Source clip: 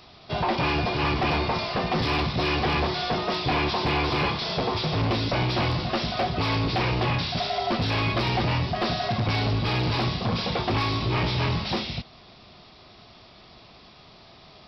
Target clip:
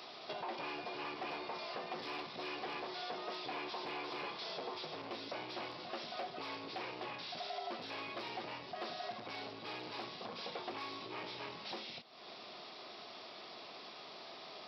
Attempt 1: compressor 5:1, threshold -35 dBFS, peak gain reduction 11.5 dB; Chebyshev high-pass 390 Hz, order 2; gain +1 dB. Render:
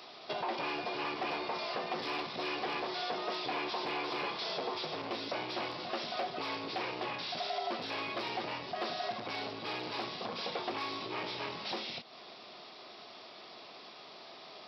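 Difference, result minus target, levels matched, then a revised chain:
compressor: peak gain reduction -6.5 dB
compressor 5:1, threshold -43 dBFS, peak gain reduction 18 dB; Chebyshev high-pass 390 Hz, order 2; gain +1 dB

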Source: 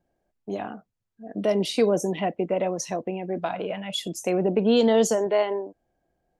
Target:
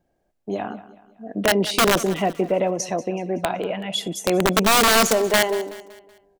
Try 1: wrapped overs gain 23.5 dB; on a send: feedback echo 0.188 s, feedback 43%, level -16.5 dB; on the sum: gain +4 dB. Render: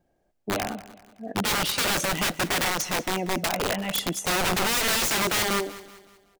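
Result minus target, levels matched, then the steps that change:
wrapped overs: distortion +16 dB
change: wrapped overs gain 14.5 dB

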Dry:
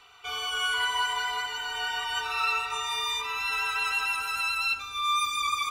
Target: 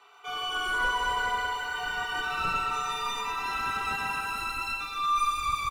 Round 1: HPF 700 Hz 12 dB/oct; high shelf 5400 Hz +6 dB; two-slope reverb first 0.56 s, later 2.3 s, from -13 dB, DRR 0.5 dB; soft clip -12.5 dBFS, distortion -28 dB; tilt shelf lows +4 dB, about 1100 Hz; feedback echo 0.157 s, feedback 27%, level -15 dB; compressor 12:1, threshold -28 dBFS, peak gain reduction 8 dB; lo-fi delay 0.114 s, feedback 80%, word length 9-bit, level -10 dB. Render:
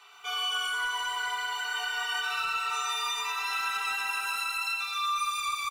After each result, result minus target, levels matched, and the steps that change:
compressor: peak gain reduction +8 dB; soft clip: distortion -10 dB; 1000 Hz band -3.0 dB
remove: compressor 12:1, threshold -28 dBFS, peak gain reduction 8 dB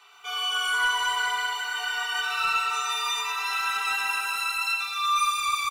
soft clip: distortion -10 dB; 1000 Hz band -2.5 dB
change: soft clip -19 dBFS, distortion -18 dB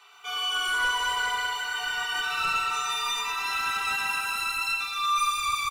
1000 Hz band -2.5 dB
change: tilt shelf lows +12.5 dB, about 1100 Hz

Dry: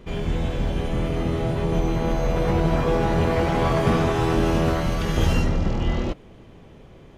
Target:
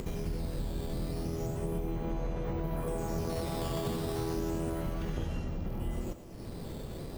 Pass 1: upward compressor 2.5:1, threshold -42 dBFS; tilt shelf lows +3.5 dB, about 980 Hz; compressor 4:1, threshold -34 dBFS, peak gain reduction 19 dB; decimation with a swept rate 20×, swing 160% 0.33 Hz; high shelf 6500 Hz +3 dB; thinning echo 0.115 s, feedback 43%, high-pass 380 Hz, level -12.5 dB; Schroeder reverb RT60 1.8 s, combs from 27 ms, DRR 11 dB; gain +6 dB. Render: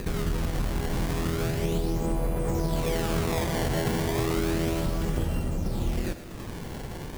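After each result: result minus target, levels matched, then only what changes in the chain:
compressor: peak gain reduction -7 dB; decimation with a swept rate: distortion +9 dB
change: compressor 4:1, threshold -43.5 dBFS, peak gain reduction 26 dB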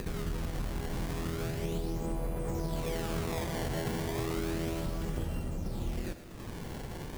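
decimation with a swept rate: distortion +9 dB
change: decimation with a swept rate 6×, swing 160% 0.33 Hz

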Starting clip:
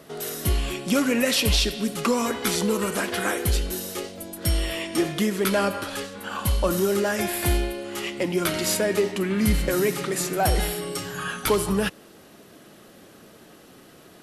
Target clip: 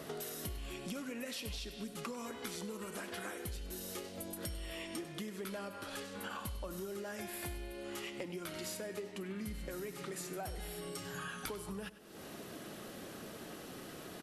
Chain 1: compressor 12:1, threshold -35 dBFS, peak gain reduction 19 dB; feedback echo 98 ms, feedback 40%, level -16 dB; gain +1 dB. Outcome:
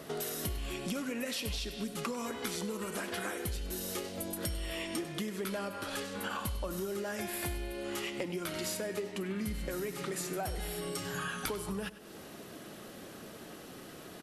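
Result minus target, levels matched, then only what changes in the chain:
compressor: peak gain reduction -6 dB
change: compressor 12:1, threshold -41.5 dBFS, peak gain reduction 25 dB

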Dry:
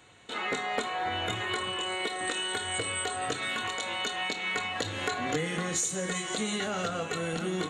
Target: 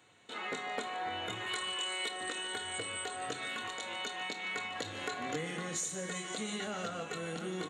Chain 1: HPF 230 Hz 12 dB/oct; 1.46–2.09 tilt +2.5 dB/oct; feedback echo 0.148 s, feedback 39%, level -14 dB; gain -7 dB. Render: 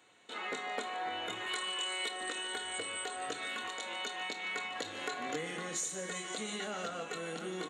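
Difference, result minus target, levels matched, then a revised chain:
125 Hz band -5.5 dB
HPF 110 Hz 12 dB/oct; 1.46–2.09 tilt +2.5 dB/oct; feedback echo 0.148 s, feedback 39%, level -14 dB; gain -7 dB

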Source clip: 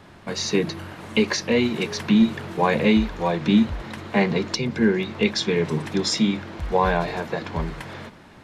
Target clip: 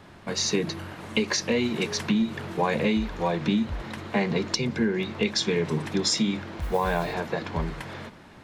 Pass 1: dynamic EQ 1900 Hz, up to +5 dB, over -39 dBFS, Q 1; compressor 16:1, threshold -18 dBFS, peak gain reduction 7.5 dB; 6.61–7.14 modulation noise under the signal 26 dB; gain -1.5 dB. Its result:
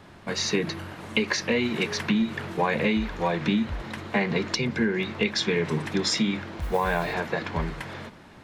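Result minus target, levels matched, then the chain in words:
8000 Hz band -3.5 dB
dynamic EQ 7300 Hz, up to +5 dB, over -39 dBFS, Q 1; compressor 16:1, threshold -18 dBFS, peak gain reduction 7 dB; 6.61–7.14 modulation noise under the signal 26 dB; gain -1.5 dB

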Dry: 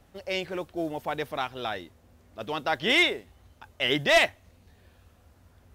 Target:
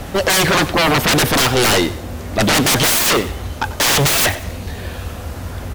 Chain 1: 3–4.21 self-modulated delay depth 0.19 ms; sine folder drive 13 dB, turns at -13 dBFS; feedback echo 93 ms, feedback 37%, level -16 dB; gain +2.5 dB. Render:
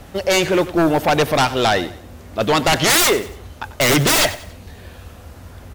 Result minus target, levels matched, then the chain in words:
sine folder: distortion -19 dB
3–4.21 self-modulated delay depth 0.19 ms; sine folder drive 24 dB, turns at -13 dBFS; feedback echo 93 ms, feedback 37%, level -16 dB; gain +2.5 dB

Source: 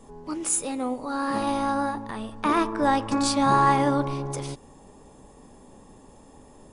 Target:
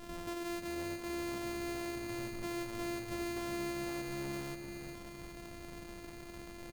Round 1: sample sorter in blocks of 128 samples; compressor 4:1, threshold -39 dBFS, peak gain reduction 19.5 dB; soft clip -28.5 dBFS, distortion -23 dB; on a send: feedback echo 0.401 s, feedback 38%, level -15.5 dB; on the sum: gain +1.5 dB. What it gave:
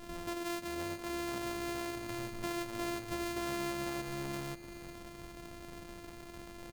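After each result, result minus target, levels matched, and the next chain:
soft clip: distortion -9 dB; echo-to-direct -8.5 dB
sample sorter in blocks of 128 samples; compressor 4:1, threshold -39 dBFS, peak gain reduction 19.5 dB; soft clip -35.5 dBFS, distortion -14 dB; on a send: feedback echo 0.401 s, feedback 38%, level -15.5 dB; on the sum: gain +1.5 dB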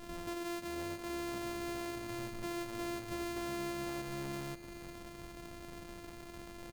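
echo-to-direct -8.5 dB
sample sorter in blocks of 128 samples; compressor 4:1, threshold -39 dBFS, peak gain reduction 19.5 dB; soft clip -35.5 dBFS, distortion -14 dB; on a send: feedback echo 0.401 s, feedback 38%, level -7 dB; on the sum: gain +1.5 dB

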